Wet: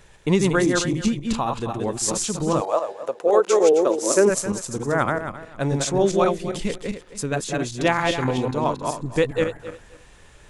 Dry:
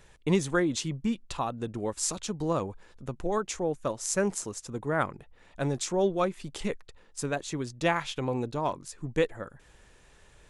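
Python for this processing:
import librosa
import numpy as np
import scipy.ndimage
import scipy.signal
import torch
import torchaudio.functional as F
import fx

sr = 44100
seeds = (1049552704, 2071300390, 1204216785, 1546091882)

y = fx.reverse_delay_fb(x, sr, ms=133, feedback_pct=42, wet_db=-2.5)
y = fx.highpass_res(y, sr, hz=fx.line((2.6, 690.0), (4.29, 310.0)), q=3.5, at=(2.6, 4.29), fade=0.02)
y = fx.dynamic_eq(y, sr, hz=1000.0, q=0.98, threshold_db=-47.0, ratio=4.0, max_db=-5, at=(6.36, 7.34))
y = y * 10.0 ** (5.5 / 20.0)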